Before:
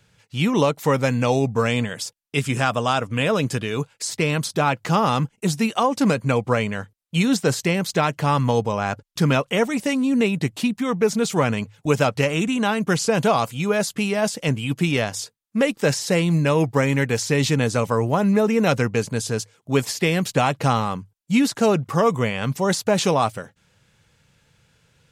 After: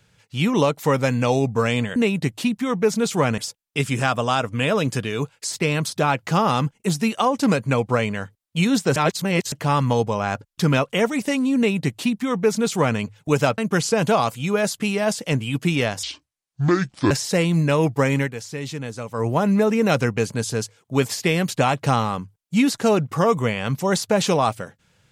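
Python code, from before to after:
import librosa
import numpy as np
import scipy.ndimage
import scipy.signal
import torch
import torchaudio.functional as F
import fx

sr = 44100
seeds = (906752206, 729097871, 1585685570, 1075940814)

y = fx.edit(x, sr, fx.reverse_span(start_s=7.54, length_s=0.56),
    fx.duplicate(start_s=10.15, length_s=1.42, to_s=1.96),
    fx.cut(start_s=12.16, length_s=0.58),
    fx.speed_span(start_s=15.19, length_s=0.69, speed=0.64),
    fx.fade_down_up(start_s=16.96, length_s=1.08, db=-10.5, fade_s=0.14), tone=tone)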